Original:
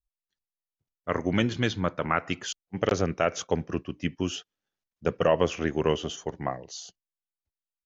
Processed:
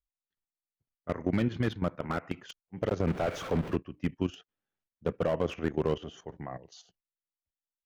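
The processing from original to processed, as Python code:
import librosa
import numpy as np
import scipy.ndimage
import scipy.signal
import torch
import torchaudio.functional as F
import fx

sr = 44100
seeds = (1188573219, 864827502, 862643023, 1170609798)

y = fx.zero_step(x, sr, step_db=-28.5, at=(3.07, 3.76))
y = fx.bass_treble(y, sr, bass_db=2, treble_db=-14)
y = fx.level_steps(y, sr, step_db=13)
y = fx.slew_limit(y, sr, full_power_hz=42.0)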